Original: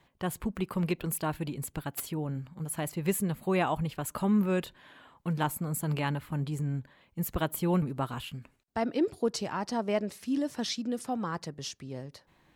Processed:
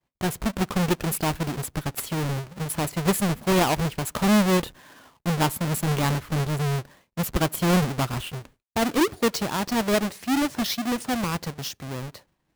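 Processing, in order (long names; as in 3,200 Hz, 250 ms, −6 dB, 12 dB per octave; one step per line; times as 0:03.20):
each half-wave held at its own peak
downward expander −48 dBFS
level +3 dB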